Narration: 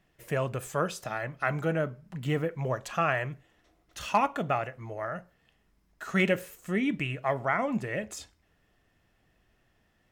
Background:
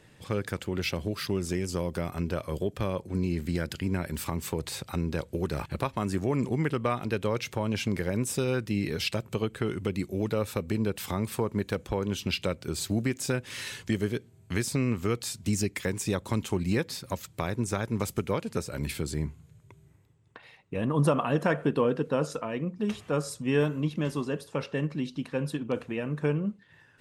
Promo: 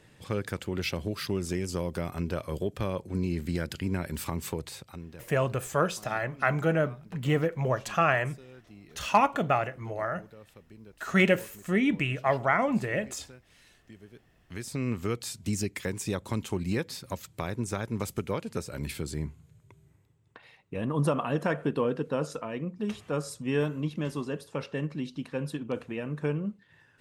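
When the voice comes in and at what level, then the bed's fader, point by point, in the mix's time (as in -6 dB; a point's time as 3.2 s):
5.00 s, +3.0 dB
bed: 4.5 s -1 dB
5.44 s -22.5 dB
14.07 s -22.5 dB
14.88 s -2.5 dB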